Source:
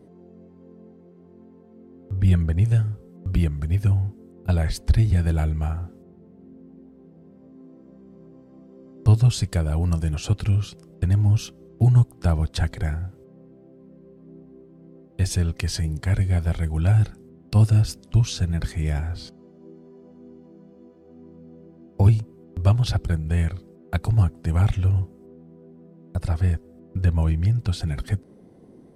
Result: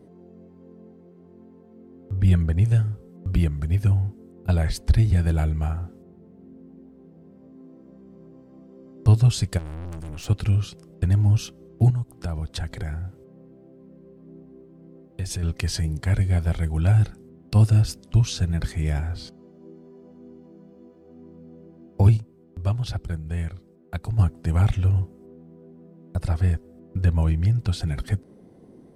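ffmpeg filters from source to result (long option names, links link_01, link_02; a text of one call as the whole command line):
ffmpeg -i in.wav -filter_complex "[0:a]asplit=3[link_01][link_02][link_03];[link_01]afade=type=out:start_time=9.57:duration=0.02[link_04];[link_02]aeval=exprs='(tanh(44.7*val(0)+0.65)-tanh(0.65))/44.7':channel_layout=same,afade=type=in:start_time=9.57:duration=0.02,afade=type=out:start_time=10.28:duration=0.02[link_05];[link_03]afade=type=in:start_time=10.28:duration=0.02[link_06];[link_04][link_05][link_06]amix=inputs=3:normalize=0,asettb=1/sr,asplit=3[link_07][link_08][link_09];[link_07]atrim=end=11.904[link_10];[link_08]atrim=start=11.9:end=15.43,asetpts=PTS-STARTPTS,afade=type=in:duration=0.004:curve=qsin,afade=type=out:start_time=3.526:duration=0.004:curve=qsin,acompressor=threshold=-27dB:ratio=3:attack=3.2:release=140:knee=1:detection=peak[link_11];[link_09]atrim=start=15.426[link_12];[link_10][link_11]acrossfade=duration=0.004:curve1=hsin:curve2=qsin[link_13];[link_13][link_12]acrossfade=duration=0.004:curve1=qsin:curve2=hsin,asplit=3[link_14][link_15][link_16];[link_14]atrim=end=22.172[link_17];[link_15]atrim=start=22.168:end=24.192,asetpts=PTS-STARTPTS,volume=-6dB[link_18];[link_16]atrim=start=24.188[link_19];[link_17][link_18]acrossfade=duration=0.004:curve1=hsin:curve2=hsin[link_20];[link_20][link_19]acrossfade=duration=0.004:curve1=hsin:curve2=hsin" out.wav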